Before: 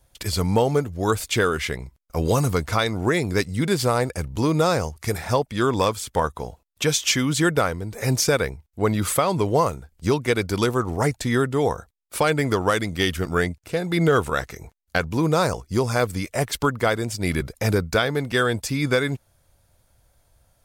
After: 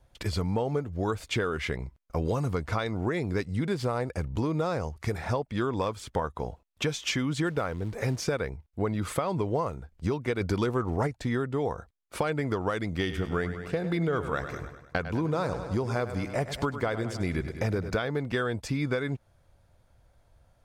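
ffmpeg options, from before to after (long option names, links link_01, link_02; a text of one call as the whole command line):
ffmpeg -i in.wav -filter_complex "[0:a]asettb=1/sr,asplit=3[link_01][link_02][link_03];[link_01]atrim=end=7.464[link_04];[link_02]atrim=start=7.46:end=8.24,asetpts=PTS-STARTPTS,afade=type=in:duration=0.004:curve=qsin,afade=type=out:start_time=0.776:duration=0.004:curve=qsin,acrusher=bits=5:mode=log:mix=0:aa=0.000001[link_05];[link_03]atrim=start=8.236[link_06];[link_04][link_05]acrossfade=duration=0.004:curve1=hsin:curve2=qsin[link_07];[link_07][link_06]acrossfade=duration=0.004:curve1=qsin:curve2=hsin,asplit=3[link_08][link_09][link_10];[link_08]afade=type=out:start_time=10.4:duration=0.02[link_11];[link_09]acontrast=72,afade=type=in:start_time=10.4:duration=0.02,afade=type=out:start_time=11.06:duration=0.02[link_12];[link_10]afade=type=in:start_time=11.06:duration=0.02[link_13];[link_11][link_12][link_13]amix=inputs=3:normalize=0,asettb=1/sr,asplit=3[link_14][link_15][link_16];[link_14]atrim=end=12.994[link_17];[link_15]atrim=start=12.99:end=17.97,asetpts=PTS-STARTPTS,afade=type=in:duration=0.004:curve=qsin,afade=type=out:start_time=4.976:duration=0.004:curve=qsin,aecho=1:1:101|202|303|404|505|606:0.224|0.125|0.0702|0.0393|0.022|0.0123,atrim=end_sample=219618[link_18];[link_16]atrim=start=17.966[link_19];[link_17][link_18]acrossfade=duration=0.004:curve1=hsin:curve2=qsin[link_20];[link_20][link_19]acrossfade=duration=0.004:curve1=qsin:curve2=hsin,aemphasis=mode=reproduction:type=75kf,acompressor=threshold=-26dB:ratio=4" out.wav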